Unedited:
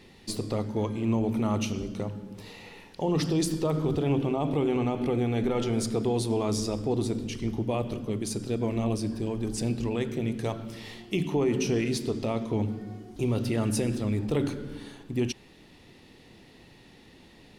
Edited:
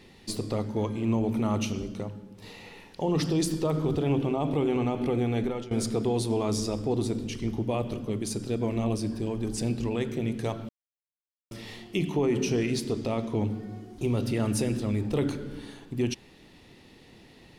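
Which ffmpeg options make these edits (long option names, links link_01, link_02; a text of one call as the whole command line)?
ffmpeg -i in.wav -filter_complex "[0:a]asplit=4[link_01][link_02][link_03][link_04];[link_01]atrim=end=2.42,asetpts=PTS-STARTPTS,afade=type=out:start_time=1.76:duration=0.66:silence=0.446684[link_05];[link_02]atrim=start=2.42:end=5.71,asetpts=PTS-STARTPTS,afade=type=in:duration=0.004:curve=hsin:silence=0.446684,afade=type=out:start_time=2.96:duration=0.33:silence=0.133352[link_06];[link_03]atrim=start=5.71:end=10.69,asetpts=PTS-STARTPTS,afade=type=in:duration=0.004:curve=hsin:silence=0.133352,afade=type=out:start_time=4.976:duration=0.004:curve=hsin,apad=pad_dur=0.82[link_07];[link_04]atrim=start=10.69,asetpts=PTS-STARTPTS,afade=type=in:duration=0.004:curve=hsin[link_08];[link_05][link_06][link_07][link_08]concat=n=4:v=0:a=1" out.wav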